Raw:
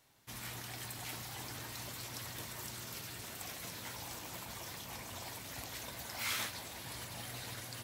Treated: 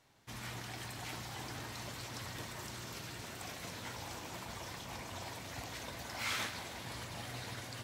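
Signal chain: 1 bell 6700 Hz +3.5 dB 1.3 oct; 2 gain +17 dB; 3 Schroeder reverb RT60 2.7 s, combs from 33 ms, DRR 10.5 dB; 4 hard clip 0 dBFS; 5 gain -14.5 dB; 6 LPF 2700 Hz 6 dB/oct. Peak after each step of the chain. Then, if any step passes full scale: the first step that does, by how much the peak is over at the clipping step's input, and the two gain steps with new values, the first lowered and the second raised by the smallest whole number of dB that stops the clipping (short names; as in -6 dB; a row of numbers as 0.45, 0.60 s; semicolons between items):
-23.5, -6.5, -6.0, -6.0, -20.5, -24.5 dBFS; no overload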